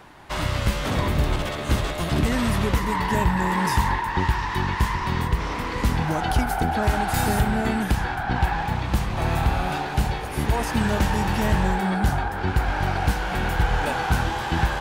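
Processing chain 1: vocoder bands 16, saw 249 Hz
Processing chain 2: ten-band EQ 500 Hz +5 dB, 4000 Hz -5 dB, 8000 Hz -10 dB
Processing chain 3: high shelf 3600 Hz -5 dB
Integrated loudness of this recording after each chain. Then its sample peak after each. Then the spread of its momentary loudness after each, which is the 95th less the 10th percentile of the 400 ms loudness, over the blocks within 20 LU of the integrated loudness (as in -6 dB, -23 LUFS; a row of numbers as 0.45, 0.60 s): -26.5, -23.5, -24.0 LUFS; -10.5, -8.0, -9.0 dBFS; 7, 4, 4 LU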